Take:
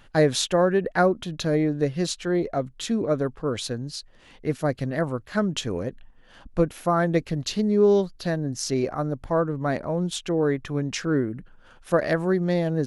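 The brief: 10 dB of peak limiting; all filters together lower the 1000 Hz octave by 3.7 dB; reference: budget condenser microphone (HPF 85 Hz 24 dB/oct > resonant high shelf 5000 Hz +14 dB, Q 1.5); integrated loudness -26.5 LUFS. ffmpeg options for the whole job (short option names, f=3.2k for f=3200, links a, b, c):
-af "equalizer=f=1k:t=o:g=-5,alimiter=limit=-17dB:level=0:latency=1,highpass=f=85:w=0.5412,highpass=f=85:w=1.3066,highshelf=f=5k:t=q:w=1.5:g=14,volume=-1.5dB"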